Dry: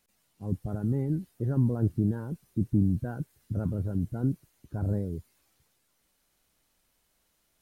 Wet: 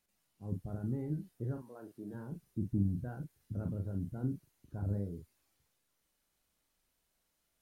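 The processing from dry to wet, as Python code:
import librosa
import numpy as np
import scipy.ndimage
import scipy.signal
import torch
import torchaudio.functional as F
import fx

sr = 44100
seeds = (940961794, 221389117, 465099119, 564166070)

y = fx.highpass(x, sr, hz=fx.line((1.56, 920.0), (2.13, 360.0)), slope=12, at=(1.56, 2.13), fade=0.02)
y = fx.doubler(y, sr, ms=40.0, db=-6.5)
y = y * 10.0 ** (-8.5 / 20.0)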